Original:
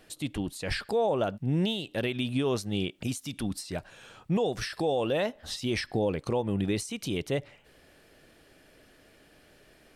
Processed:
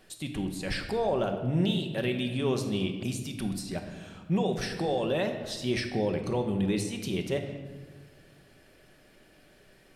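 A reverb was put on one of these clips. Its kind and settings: shoebox room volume 1200 m³, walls mixed, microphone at 1.1 m; gain -2 dB

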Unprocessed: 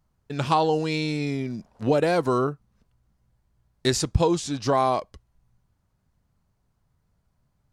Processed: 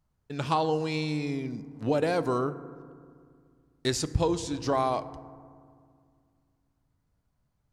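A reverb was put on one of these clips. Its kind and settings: FDN reverb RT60 2.1 s, low-frequency decay 1.35×, high-frequency decay 0.35×, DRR 13 dB; gain -5 dB

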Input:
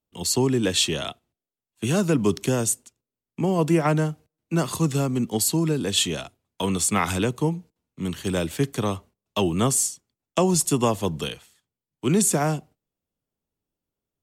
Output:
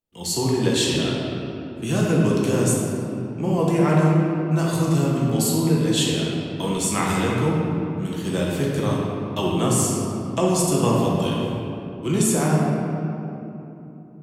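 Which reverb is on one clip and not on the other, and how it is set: shoebox room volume 140 m³, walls hard, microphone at 0.73 m; gain -4 dB

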